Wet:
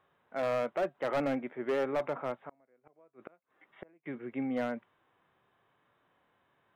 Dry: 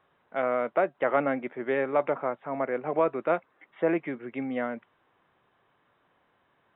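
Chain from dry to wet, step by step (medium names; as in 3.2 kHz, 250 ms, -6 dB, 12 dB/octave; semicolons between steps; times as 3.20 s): 2.39–4.06 s: inverted gate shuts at -22 dBFS, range -36 dB; harmonic-percussive split percussive -7 dB; hard clipper -24.5 dBFS, distortion -12 dB; trim -1 dB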